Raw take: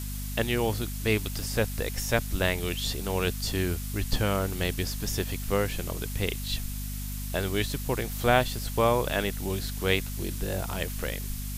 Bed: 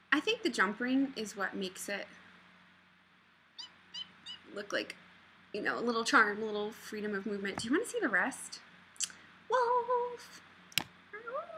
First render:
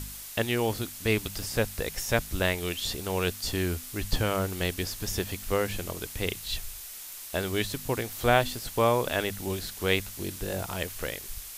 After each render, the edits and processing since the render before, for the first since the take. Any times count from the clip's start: de-hum 50 Hz, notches 5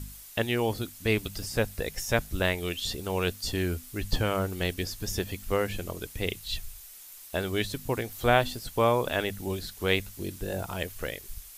denoiser 8 dB, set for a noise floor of -42 dBFS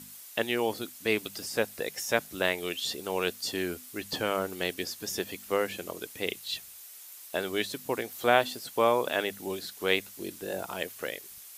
HPF 260 Hz 12 dB/oct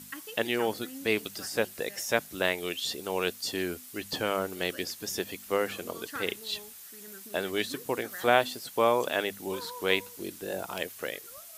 add bed -13.5 dB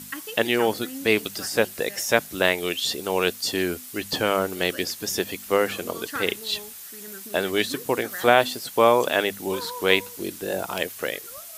gain +7 dB; limiter -1 dBFS, peak gain reduction 2.5 dB

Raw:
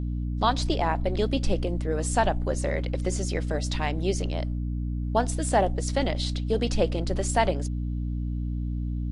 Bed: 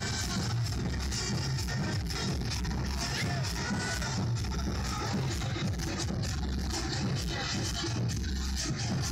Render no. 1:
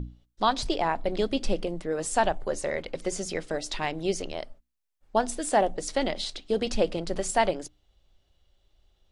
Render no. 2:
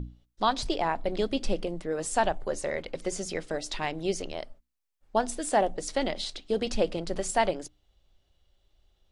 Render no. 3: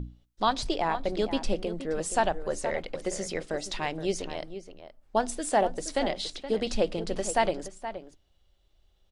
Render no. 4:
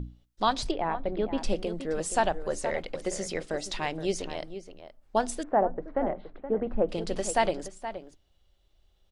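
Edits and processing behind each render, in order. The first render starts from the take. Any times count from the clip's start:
notches 60/120/180/240/300 Hz
gain -1.5 dB
outdoor echo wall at 81 m, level -11 dB
0.71–1.38 air absorption 460 m; 5.43–6.89 LPF 1500 Hz 24 dB/oct

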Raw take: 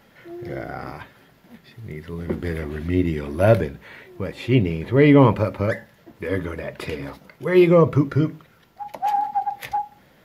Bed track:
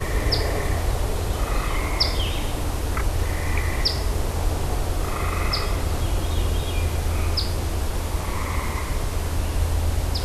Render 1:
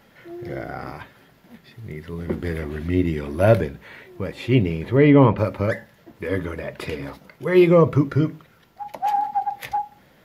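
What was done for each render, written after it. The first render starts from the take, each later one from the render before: 4.97–5.38 air absorption 180 m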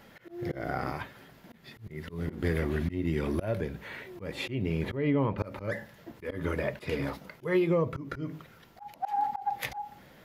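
compressor 20:1, threshold -22 dBFS, peak gain reduction 14.5 dB; auto swell 0.159 s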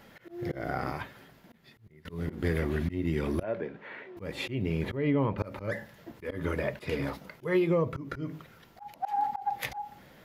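1.13–2.05 fade out, to -22 dB; 3.43–4.17 BPF 250–2300 Hz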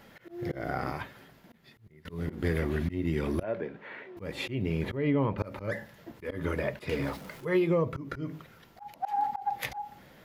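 6.9–7.45 zero-crossing step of -45.5 dBFS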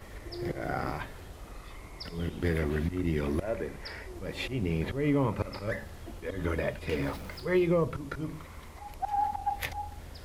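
add bed track -22 dB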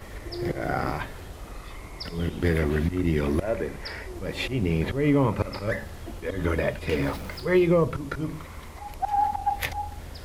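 gain +5.5 dB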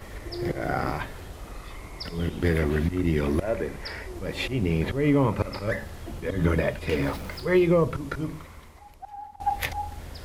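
6.11–6.61 bell 150 Hz +8.5 dB 1.1 oct; 8.21–9.4 fade out quadratic, to -18.5 dB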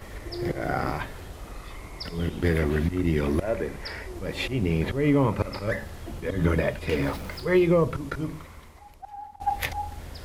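attack slew limiter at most 500 dB/s

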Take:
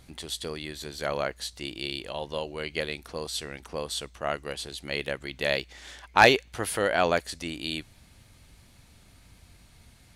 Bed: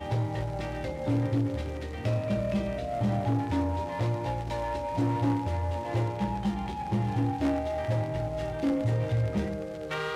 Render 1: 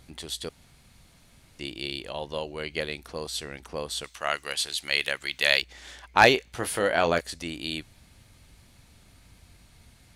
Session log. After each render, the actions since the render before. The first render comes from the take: 0.49–1.59 room tone; 4.04–5.62 tilt shelf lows -9.5 dB, about 780 Hz; 6.34–7.21 doubler 24 ms -9.5 dB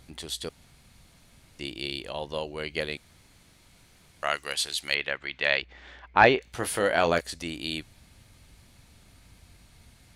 2.97–4.23 room tone; 4.94–6.42 LPF 2500 Hz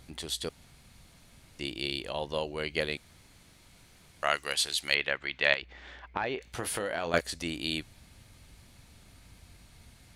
5.53–7.14 compressor 5:1, threshold -29 dBFS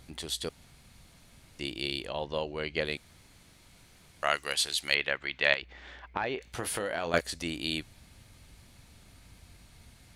2.07–2.85 air absorption 80 m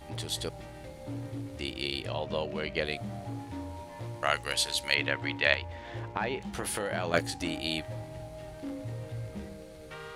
add bed -11.5 dB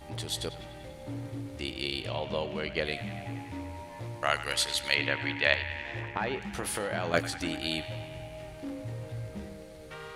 narrowing echo 96 ms, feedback 83%, band-pass 2100 Hz, level -12 dB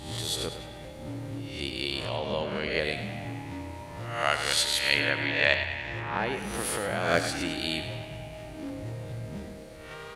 spectral swells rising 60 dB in 0.67 s; frequency-shifting echo 0.104 s, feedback 40%, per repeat +34 Hz, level -11 dB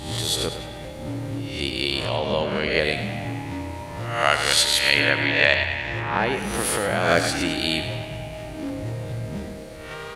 gain +7 dB; limiter -2 dBFS, peak gain reduction 3 dB

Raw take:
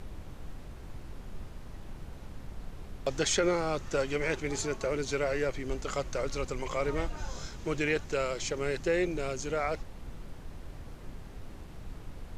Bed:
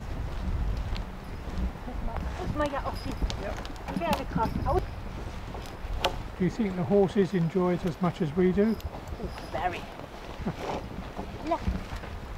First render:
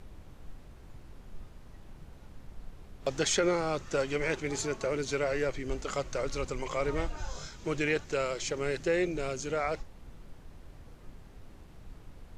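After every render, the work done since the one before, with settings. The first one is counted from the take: noise print and reduce 6 dB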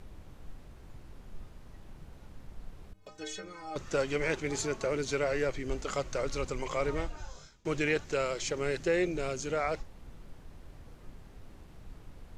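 2.93–3.76 metallic resonator 92 Hz, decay 0.61 s, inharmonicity 0.03; 6.83–7.65 fade out, to -23.5 dB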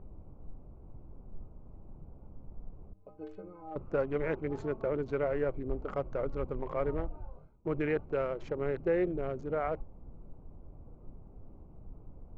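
Wiener smoothing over 25 samples; LPF 1400 Hz 12 dB/oct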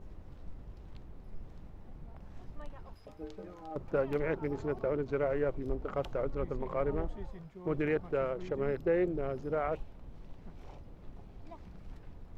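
add bed -23 dB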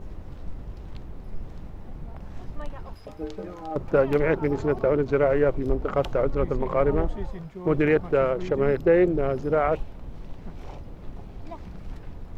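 gain +10.5 dB

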